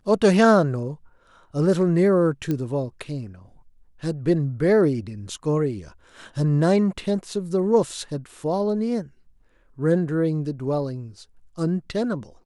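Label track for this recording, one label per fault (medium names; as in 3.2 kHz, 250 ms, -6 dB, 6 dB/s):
2.510000	2.510000	pop -14 dBFS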